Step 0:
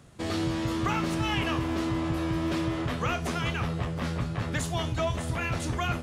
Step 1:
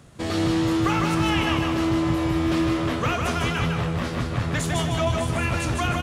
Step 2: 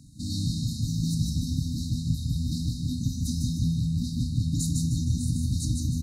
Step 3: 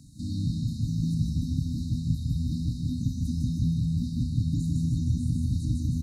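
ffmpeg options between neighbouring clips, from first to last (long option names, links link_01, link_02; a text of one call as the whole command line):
ffmpeg -i in.wav -af "aecho=1:1:153|306|459|612|765:0.668|0.261|0.102|0.0396|0.0155,volume=4dB" out.wav
ffmpeg -i in.wav -af "afftfilt=real='re*(1-between(b*sr/4096,310,3700))':imag='im*(1-between(b*sr/4096,310,3700))':win_size=4096:overlap=0.75" out.wav
ffmpeg -i in.wav -filter_complex "[0:a]acrossover=split=2500[link_01][link_02];[link_02]acompressor=threshold=-51dB:ratio=4:attack=1:release=60[link_03];[link_01][link_03]amix=inputs=2:normalize=0" out.wav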